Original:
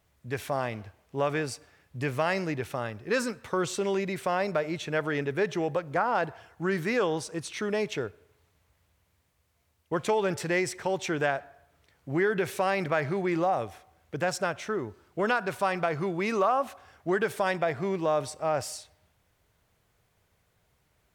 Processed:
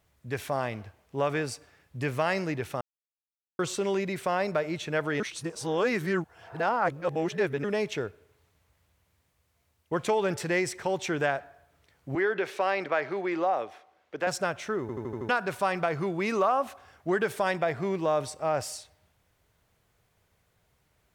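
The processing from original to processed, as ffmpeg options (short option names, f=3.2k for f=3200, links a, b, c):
-filter_complex "[0:a]asettb=1/sr,asplit=3[a][b][c];[a]atrim=end=12.154[d];[b]atrim=start=12.15:end=14.27,asetpts=PTS-STARTPTS,afade=t=in:d=0.004:c=qsin,afade=t=out:st=2.116:d=0.004:c=qsin,acrossover=split=260 5500:gain=0.0891 1 0.2[e][f][g];[e][f][g]amix=inputs=3:normalize=0[h];[c]atrim=start=14.266[i];[d][h]acrossfade=d=0.004:c1=hsin:c2=qsin[j];[j][i]acrossfade=d=0.004:c1=qsin:c2=hsin,asplit=11[k][l][m][n][o][p][q][r][s][t][u];[k]atrim=end=2.81,asetpts=PTS-STARTPTS,afade=t=out:st=2.806:d=0.004:c=hsin[v];[l]atrim=start=2.81:end=3.59,asetpts=PTS-STARTPTS,volume=0[w];[m]atrim=start=3.59:end=5.202,asetpts=PTS-STARTPTS,afade=t=in:d=0.004:c=hsin[x];[n]atrim=start=5.198:end=7.642,asetpts=PTS-STARTPTS,areverse[y];[o]atrim=start=7.638:end=14.892[z];[p]atrim=start=14.808:end=14.892[aa];[q]atrim=start=14.808:end=14.892[ab];[r]atrim=start=14.808:end=14.892[ac];[s]atrim=start=14.808:end=14.892[ad];[t]atrim=start=14.808:end=14.892[ae];[u]atrim=start=15.288[af];[v][w][x]concat=n=3:v=0:a=1[ag];[ag][y]acrossfade=d=0.004:c1=hsin:c2=hsin[ah];[ah][z]acrossfade=d=0.004:c1=hsin:c2=hsin[ai];[ai][aa]acrossfade=d=0.004:c1=hsin:c2=hsin[aj];[aj][ab]acrossfade=d=0.004:c1=hsin:c2=hsin[ak];[ak][ac]acrossfade=d=0.004:c1=hsin:c2=hsin[al];[al][ad]acrossfade=d=0.004:c1=hsin:c2=hsin[am];[am][ae]acrossfade=d=0.004:c1=hsin:c2=hsin[an];[an][af]acrossfade=d=0.004:c1=hsin:c2=hsin"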